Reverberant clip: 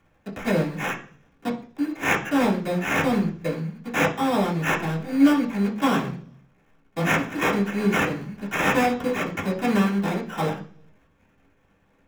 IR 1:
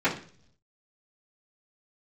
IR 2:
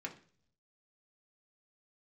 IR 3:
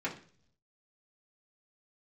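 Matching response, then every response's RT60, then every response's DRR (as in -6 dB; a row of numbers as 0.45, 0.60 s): 3; 0.50, 0.50, 0.50 s; -13.5, -0.5, -6.5 dB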